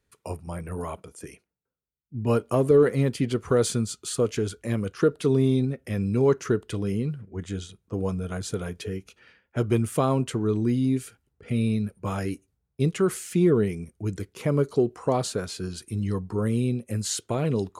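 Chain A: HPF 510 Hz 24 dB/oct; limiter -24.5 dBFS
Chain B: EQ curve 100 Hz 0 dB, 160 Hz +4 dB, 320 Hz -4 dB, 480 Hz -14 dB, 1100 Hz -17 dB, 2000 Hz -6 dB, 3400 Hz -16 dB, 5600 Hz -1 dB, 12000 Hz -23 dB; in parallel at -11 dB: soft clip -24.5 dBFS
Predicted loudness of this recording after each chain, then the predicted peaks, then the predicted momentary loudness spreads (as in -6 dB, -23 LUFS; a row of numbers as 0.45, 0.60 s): -37.0, -26.5 LUFS; -24.5, -11.0 dBFS; 11, 11 LU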